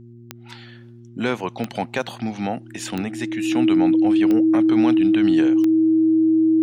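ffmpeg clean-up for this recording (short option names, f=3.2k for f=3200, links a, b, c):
-af "adeclick=t=4,bandreject=f=118.1:t=h:w=4,bandreject=f=236.2:t=h:w=4,bandreject=f=354.3:t=h:w=4,bandreject=f=320:w=30"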